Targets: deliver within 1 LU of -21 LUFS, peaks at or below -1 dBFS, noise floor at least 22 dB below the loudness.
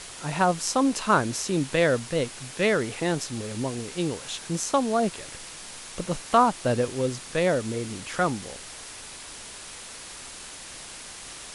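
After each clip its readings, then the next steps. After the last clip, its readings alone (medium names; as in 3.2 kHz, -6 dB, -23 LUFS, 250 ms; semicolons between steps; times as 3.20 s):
noise floor -42 dBFS; noise floor target -48 dBFS; loudness -26.0 LUFS; peak level -6.5 dBFS; loudness target -21.0 LUFS
-> noise reduction 6 dB, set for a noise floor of -42 dBFS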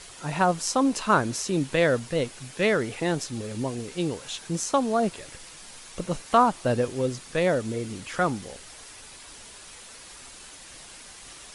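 noise floor -46 dBFS; noise floor target -48 dBFS
-> noise reduction 6 dB, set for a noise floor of -46 dBFS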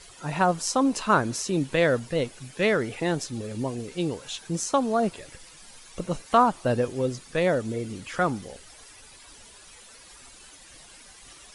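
noise floor -50 dBFS; loudness -26.0 LUFS; peak level -7.0 dBFS; loudness target -21.0 LUFS
-> trim +5 dB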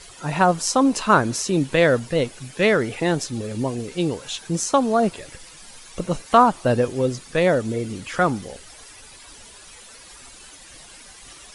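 loudness -21.0 LUFS; peak level -2.0 dBFS; noise floor -45 dBFS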